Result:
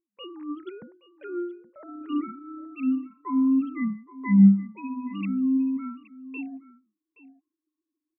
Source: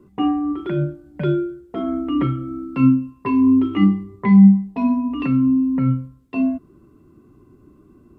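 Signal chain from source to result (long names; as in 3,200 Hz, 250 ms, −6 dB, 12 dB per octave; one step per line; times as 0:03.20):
three sine waves on the formant tracks
dynamic equaliser 2,200 Hz, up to +4 dB, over −46 dBFS, Q 1.3
noise gate with hold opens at −36 dBFS
on a send: single-tap delay 822 ms −17.5 dB
on the sum: level −8 dB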